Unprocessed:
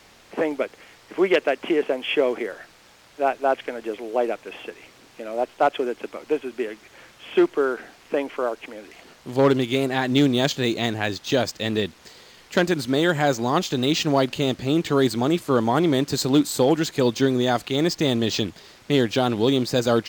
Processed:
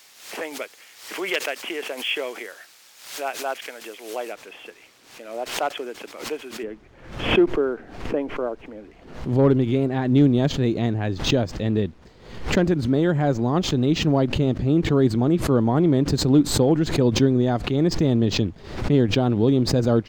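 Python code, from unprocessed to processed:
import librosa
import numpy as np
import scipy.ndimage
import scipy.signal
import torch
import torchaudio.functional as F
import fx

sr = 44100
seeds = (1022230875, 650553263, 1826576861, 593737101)

y = fx.tilt_eq(x, sr, slope=fx.steps((0.0, 4.0), (4.31, 1.5), (6.62, -4.0)))
y = fx.pre_swell(y, sr, db_per_s=87.0)
y = y * librosa.db_to_amplitude(-5.5)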